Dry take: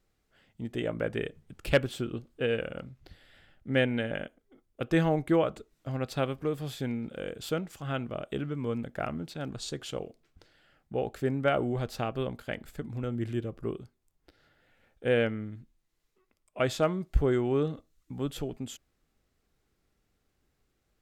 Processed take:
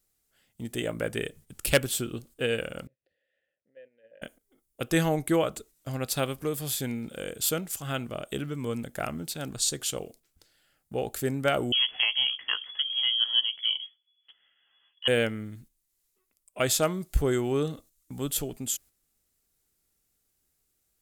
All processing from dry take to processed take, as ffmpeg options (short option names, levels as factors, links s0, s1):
-filter_complex "[0:a]asettb=1/sr,asplit=3[s0][s1][s2];[s0]atrim=end=2.874[s3];[s1]atrim=start=2.87:end=4.22,asetpts=PTS-STARTPTS,afade=t=in:d=0.004:c=qsin,afade=t=out:st=1.346:d=0.004:c=qsin,highshelf=f=2400:g=-10.5,acompressor=threshold=0.01:ratio=12:attack=3.2:release=140:knee=1:detection=peak,asplit=3[s4][s5][s6];[s4]bandpass=f=530:t=q:w=8,volume=1[s7];[s5]bandpass=f=1840:t=q:w=8,volume=0.501[s8];[s6]bandpass=f=2480:t=q:w=8,volume=0.355[s9];[s7][s8][s9]amix=inputs=3:normalize=0[s10];[s2]atrim=start=4.216[s11];[s3][s10]acrossfade=d=0.004:c1=hsin:c2=qsin[s12];[s12][s11]acrossfade=d=0.004:c1=qsin:c2=hsin,asettb=1/sr,asplit=3[s13][s14][s15];[s13]atrim=end=11.724[s16];[s14]atrim=start=11.72:end=15.08,asetpts=PTS-STARTPTS,afade=t=in:d=0.004:c=qsin,afade=t=out:st=3.356:d=0.004:c=qsin,asplit=2[s17][s18];[s18]adelay=14,volume=0.447[s19];[s17][s19]amix=inputs=2:normalize=0,atrim=end_sample=148176,lowpass=f=2900:t=q:w=0.5098,lowpass=f=2900:t=q:w=0.6013,lowpass=f=2900:t=q:w=0.9,lowpass=f=2900:t=q:w=2.563,afreqshift=-3400[s20];[s15]atrim=start=15.076[s21];[s16][s20]acrossfade=d=0.004:c1=hsin:c2=qsin[s22];[s22][s21]acrossfade=d=0.004:c1=qsin:c2=hsin,aemphasis=mode=production:type=75kf,agate=range=0.398:threshold=0.00251:ratio=16:detection=peak,equalizer=f=10000:w=0.71:g=7.5"